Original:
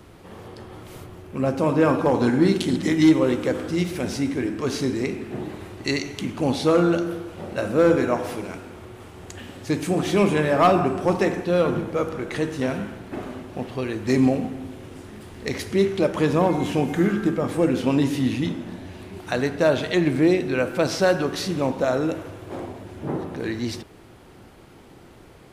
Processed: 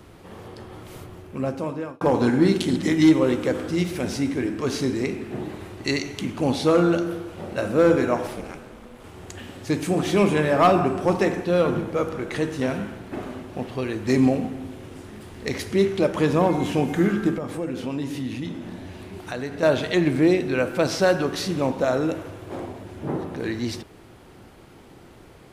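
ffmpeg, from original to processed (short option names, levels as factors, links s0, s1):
-filter_complex "[0:a]asettb=1/sr,asplit=3[s0][s1][s2];[s0]atrim=end=8.274[s3];[s1]atrim=start=8.27:end=9.04,asetpts=PTS-STARTPTS,afade=t=in:d=0.004:c=qsin,afade=t=out:st=0.766:d=0.004:c=qsin,aeval=exprs='val(0)*sin(2*PI*130*n/s)':c=same[s4];[s2]atrim=start=9.036[s5];[s3][s4]acrossfade=d=0.004:c1=hsin:c2=qsin[s6];[s6][s5]acrossfade=d=0.004:c1=qsin:c2=hsin,asettb=1/sr,asplit=3[s7][s8][s9];[s7]atrim=end=17.384[s10];[s8]atrim=start=17.38:end=19.63,asetpts=PTS-STARTPTS,afade=t=in:d=0.004:c=qsin,afade=t=out:st=2.246:d=0.004:c=qsin,acompressor=threshold=0.0282:ratio=2:attack=3.2:release=140:knee=1:detection=peak[s11];[s9]atrim=start=19.626[s12];[s10][s11]acrossfade=d=0.004:c1=hsin:c2=qsin[s13];[s13][s12]acrossfade=d=0.004:c1=qsin:c2=hsin,asplit=2[s14][s15];[s14]atrim=end=2.01,asetpts=PTS-STARTPTS,afade=t=out:st=1.18:d=0.83[s16];[s15]atrim=start=2.01,asetpts=PTS-STARTPTS,afade=t=in:d=0.004:c=hsin[s17];[s16][s17]concat=n=2:v=0:a=1"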